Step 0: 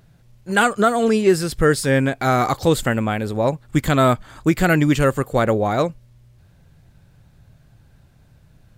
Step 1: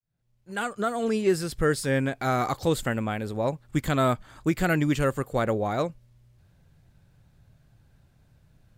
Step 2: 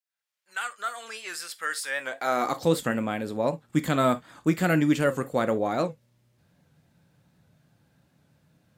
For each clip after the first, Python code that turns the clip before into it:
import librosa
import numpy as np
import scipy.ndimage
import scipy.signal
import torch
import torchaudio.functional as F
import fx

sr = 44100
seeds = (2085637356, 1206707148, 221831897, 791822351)

y1 = fx.fade_in_head(x, sr, length_s=1.27)
y1 = F.gain(torch.from_numpy(y1), -7.5).numpy()
y2 = fx.rev_gated(y1, sr, seeds[0], gate_ms=90, shape='falling', drr_db=10.0)
y2 = fx.filter_sweep_highpass(y2, sr, from_hz=1400.0, to_hz=160.0, start_s=1.87, end_s=2.67, q=0.94)
y2 = fx.record_warp(y2, sr, rpm=78.0, depth_cents=100.0)